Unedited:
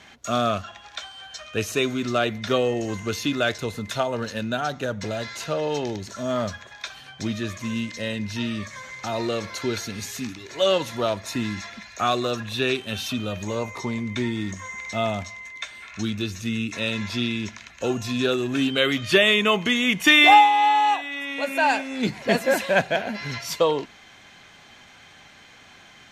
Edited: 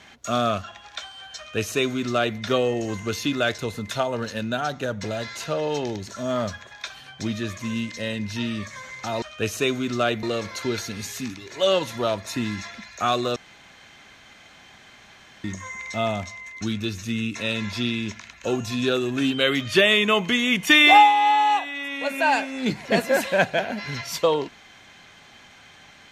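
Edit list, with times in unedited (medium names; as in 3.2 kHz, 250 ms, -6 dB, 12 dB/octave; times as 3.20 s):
1.37–2.38 s: copy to 9.22 s
12.35–14.43 s: room tone
15.60–15.98 s: delete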